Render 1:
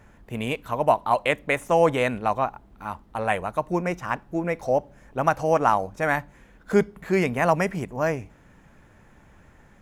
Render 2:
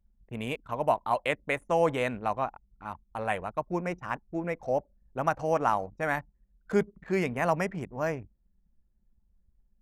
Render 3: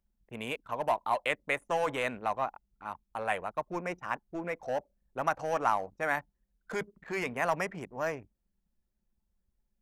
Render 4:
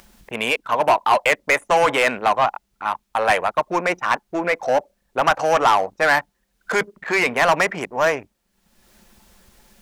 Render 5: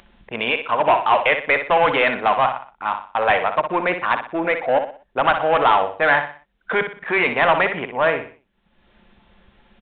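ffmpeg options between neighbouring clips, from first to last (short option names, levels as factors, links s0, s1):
-af "anlmdn=1,volume=0.501"
-filter_complex "[0:a]lowshelf=f=210:g=-12,acrossover=split=710[s0][s1];[s0]volume=47.3,asoftclip=hard,volume=0.0211[s2];[s2][s1]amix=inputs=2:normalize=0"
-filter_complex "[0:a]asplit=2[s0][s1];[s1]highpass=f=720:p=1,volume=8.91,asoftclip=type=tanh:threshold=0.237[s2];[s0][s2]amix=inputs=2:normalize=0,lowpass=f=7800:p=1,volume=0.501,acompressor=mode=upward:threshold=0.00794:ratio=2.5,volume=2.11"
-filter_complex "[0:a]asplit=2[s0][s1];[s1]aecho=0:1:61|122|183|244:0.376|0.135|0.0487|0.0175[s2];[s0][s2]amix=inputs=2:normalize=0,aresample=8000,aresample=44100"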